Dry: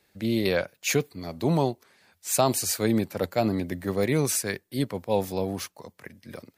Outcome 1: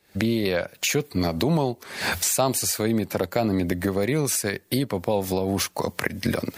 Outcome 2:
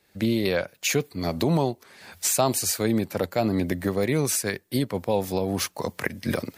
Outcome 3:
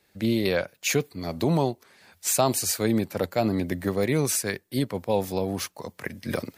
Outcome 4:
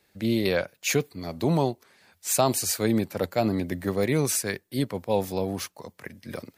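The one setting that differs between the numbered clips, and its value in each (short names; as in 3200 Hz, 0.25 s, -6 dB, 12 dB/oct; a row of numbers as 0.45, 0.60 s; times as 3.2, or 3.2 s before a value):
recorder AGC, rising by: 89, 36, 15, 5.1 dB/s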